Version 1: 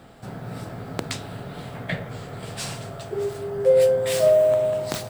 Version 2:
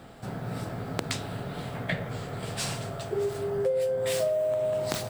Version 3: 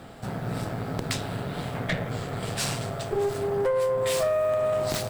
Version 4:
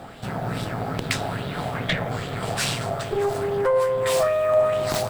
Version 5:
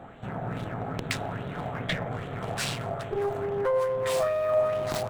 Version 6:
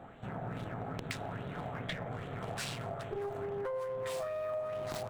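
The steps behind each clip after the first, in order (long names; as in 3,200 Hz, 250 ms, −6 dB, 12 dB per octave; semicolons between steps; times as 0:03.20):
downward compressor 12 to 1, threshold −24 dBFS, peak gain reduction 12 dB
tube saturation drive 26 dB, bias 0.6; level +6.5 dB
auto-filter bell 2.4 Hz 690–3,600 Hz +9 dB; level +2 dB
adaptive Wiener filter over 9 samples; level −5 dB
downward compressor, threshold −29 dBFS, peak gain reduction 9 dB; level −5.5 dB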